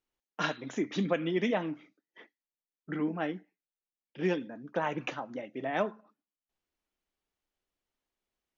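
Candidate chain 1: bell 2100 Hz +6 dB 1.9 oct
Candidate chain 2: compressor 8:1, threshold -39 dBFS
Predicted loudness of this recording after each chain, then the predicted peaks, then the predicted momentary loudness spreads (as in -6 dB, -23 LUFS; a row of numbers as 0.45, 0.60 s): -31.5, -44.5 LUFS; -12.5, -26.5 dBFS; 11, 14 LU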